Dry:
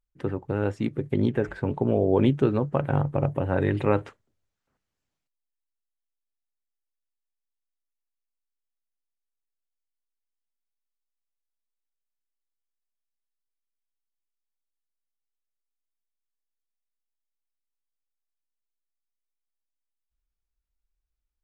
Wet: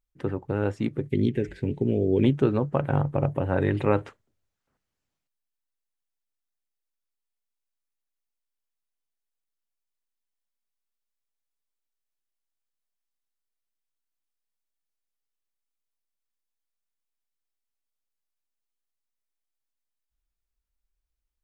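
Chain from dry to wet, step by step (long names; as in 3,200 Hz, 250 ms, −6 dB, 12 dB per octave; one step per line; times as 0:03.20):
0:01.07–0:02.24: drawn EQ curve 400 Hz 0 dB, 610 Hz −12 dB, 1,200 Hz −22 dB, 2,000 Hz +1 dB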